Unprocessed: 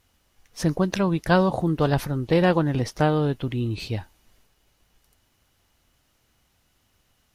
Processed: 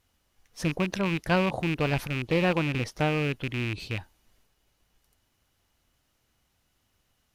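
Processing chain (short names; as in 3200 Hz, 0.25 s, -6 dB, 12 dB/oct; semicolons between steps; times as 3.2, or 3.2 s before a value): rattling part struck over -24 dBFS, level -16 dBFS; gain -5.5 dB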